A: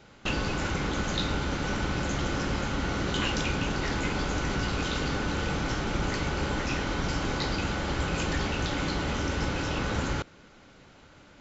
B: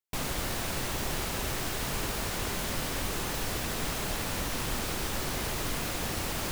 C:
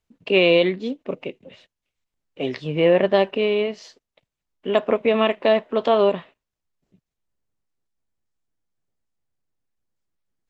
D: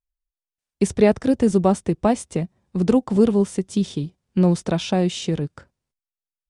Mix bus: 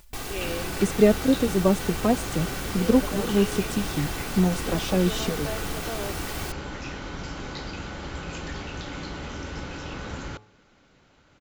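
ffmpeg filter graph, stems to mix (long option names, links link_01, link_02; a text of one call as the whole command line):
ffmpeg -i stem1.wav -i stem2.wav -i stem3.wav -i stem4.wav -filter_complex "[0:a]bandreject=frequency=106.5:width_type=h:width=4,bandreject=frequency=213:width_type=h:width=4,bandreject=frequency=319.5:width_type=h:width=4,bandreject=frequency=426:width_type=h:width=4,bandreject=frequency=532.5:width_type=h:width=4,bandreject=frequency=639:width_type=h:width=4,bandreject=frequency=745.5:width_type=h:width=4,bandreject=frequency=852:width_type=h:width=4,bandreject=frequency=958.5:width_type=h:width=4,bandreject=frequency=1065:width_type=h:width=4,bandreject=frequency=1171.5:width_type=h:width=4,adelay=150,volume=-5.5dB[link_01];[1:a]aecho=1:1:2.6:0.53,volume=-2.5dB[link_02];[2:a]volume=-18.5dB[link_03];[3:a]acompressor=mode=upward:threshold=-20dB:ratio=2.5,asplit=2[link_04][link_05];[link_05]adelay=3,afreqshift=1.2[link_06];[link_04][link_06]amix=inputs=2:normalize=1,volume=-1.5dB[link_07];[link_01][link_02][link_03][link_07]amix=inputs=4:normalize=0" out.wav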